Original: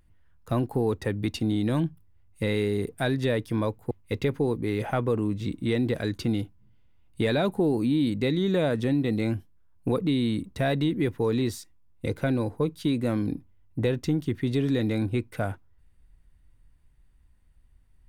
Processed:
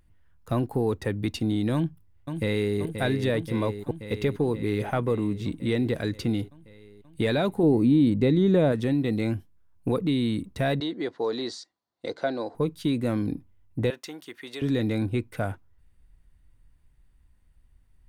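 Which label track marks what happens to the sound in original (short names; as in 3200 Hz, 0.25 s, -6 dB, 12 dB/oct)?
1.740000	2.770000	echo throw 0.53 s, feedback 75%, level -7.5 dB
7.630000	8.720000	tilt shelf lows +5 dB, about 1100 Hz
10.800000	12.550000	speaker cabinet 380–6700 Hz, peaks and dips at 680 Hz +7 dB, 2500 Hz -9 dB, 4300 Hz +9 dB
13.900000	14.620000	HPF 710 Hz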